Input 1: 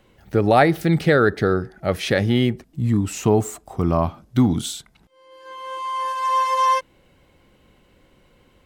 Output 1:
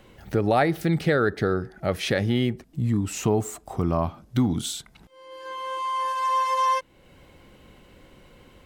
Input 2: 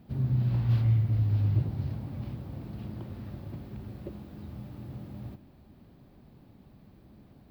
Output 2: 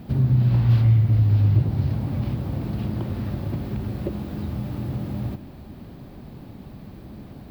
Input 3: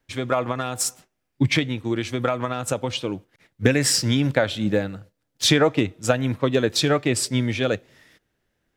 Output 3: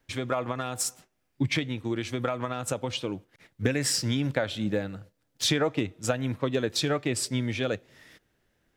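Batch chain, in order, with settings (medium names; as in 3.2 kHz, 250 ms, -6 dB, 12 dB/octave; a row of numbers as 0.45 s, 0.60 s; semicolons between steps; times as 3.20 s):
compression 1.5:1, threshold -41 dBFS; peak normalisation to -9 dBFS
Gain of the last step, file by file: +4.5 dB, +14.5 dB, +2.0 dB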